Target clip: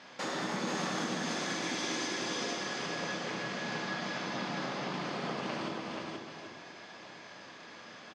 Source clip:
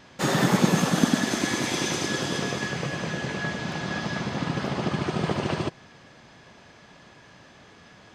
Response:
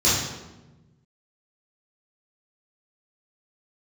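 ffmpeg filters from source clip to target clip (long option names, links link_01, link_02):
-filter_complex "[0:a]highpass=320,lowpass=6400,asplit=2[link_01][link_02];[link_02]aecho=0:1:299:0.224[link_03];[link_01][link_03]amix=inputs=2:normalize=0,acompressor=threshold=-38dB:ratio=3,aecho=1:1:480:0.668,asplit=2[link_04][link_05];[1:a]atrim=start_sample=2205[link_06];[link_05][link_06]afir=irnorm=-1:irlink=0,volume=-22dB[link_07];[link_04][link_07]amix=inputs=2:normalize=0"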